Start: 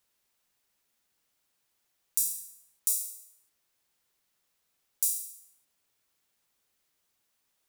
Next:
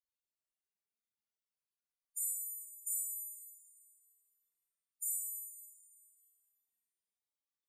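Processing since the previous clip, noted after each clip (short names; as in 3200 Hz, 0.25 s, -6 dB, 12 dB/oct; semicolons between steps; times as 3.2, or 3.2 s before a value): spectral noise reduction 7 dB; loudest bins only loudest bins 16; Schroeder reverb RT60 1.9 s, combs from 27 ms, DRR -3 dB; gain -6.5 dB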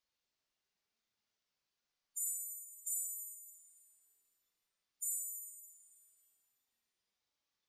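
resonant high shelf 7200 Hz -10 dB, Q 1.5; gain +8.5 dB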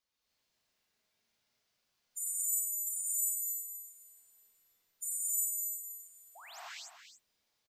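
painted sound rise, 6.35–6.6, 610–8700 Hz -53 dBFS; echo 0.286 s -10 dB; non-linear reverb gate 0.32 s rising, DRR -7 dB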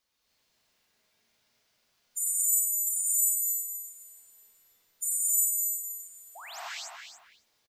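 speakerphone echo 0.27 s, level -8 dB; gain +7.5 dB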